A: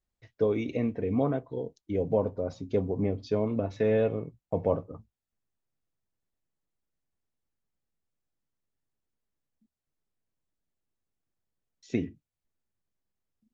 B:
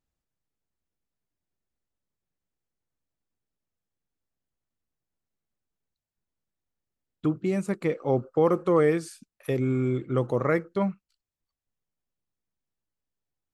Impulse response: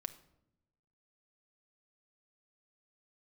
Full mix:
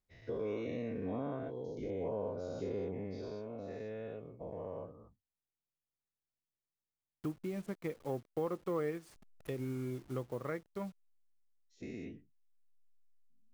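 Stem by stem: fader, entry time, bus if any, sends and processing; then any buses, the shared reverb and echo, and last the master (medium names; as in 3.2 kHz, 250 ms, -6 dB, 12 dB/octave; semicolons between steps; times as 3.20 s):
2.81 s -8 dB -> 3.43 s -18.5 dB, 0.00 s, no send, every event in the spectrogram widened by 240 ms
-2.5 dB, 0.00 s, no send, send-on-delta sampling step -39 dBFS; upward expansion 1.5:1, over -37 dBFS; auto duck -9 dB, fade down 1.75 s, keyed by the first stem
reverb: none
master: compression 2:1, threshold -42 dBFS, peak gain reduction 12.5 dB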